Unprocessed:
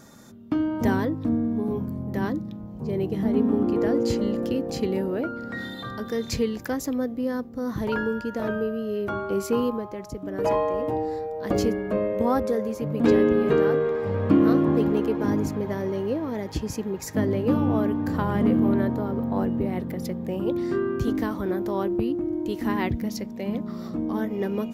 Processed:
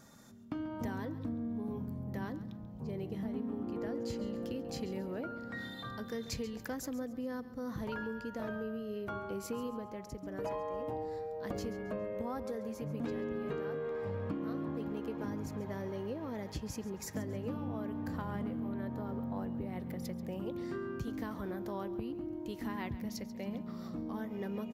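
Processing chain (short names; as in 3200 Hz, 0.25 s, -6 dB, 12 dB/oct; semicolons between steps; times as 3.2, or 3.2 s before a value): bell 360 Hz -4.5 dB 0.85 oct; compressor, threshold -27 dBFS, peak gain reduction 11 dB; feedback echo 0.137 s, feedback 36%, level -15 dB; gain -8 dB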